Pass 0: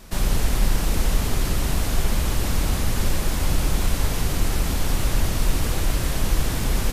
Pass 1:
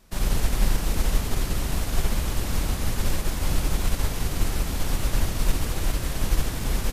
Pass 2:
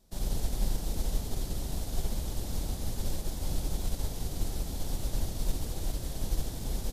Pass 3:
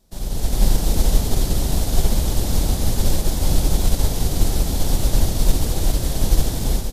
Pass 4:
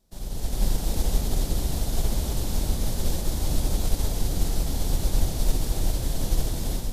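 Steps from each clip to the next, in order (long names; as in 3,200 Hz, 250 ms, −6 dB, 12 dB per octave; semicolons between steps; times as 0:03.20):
expander for the loud parts 1.5 to 1, over −37 dBFS
flat-topped bell 1,700 Hz −9 dB; level −8 dB
automatic gain control gain up to 10 dB; level +4.5 dB
echo with a time of its own for lows and highs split 350 Hz, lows 648 ms, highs 259 ms, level −8 dB; level −7.5 dB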